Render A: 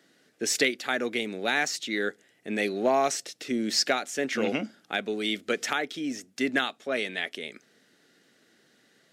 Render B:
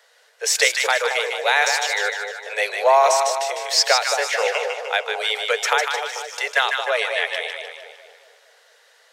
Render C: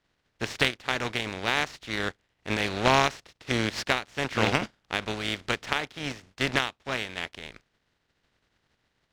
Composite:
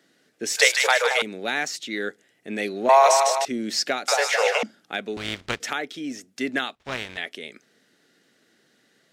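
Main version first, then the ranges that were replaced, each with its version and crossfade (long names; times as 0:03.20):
A
0:00.57–0:01.22: punch in from B
0:02.89–0:03.45: punch in from B
0:04.08–0:04.63: punch in from B
0:05.17–0:05.60: punch in from C
0:06.75–0:07.17: punch in from C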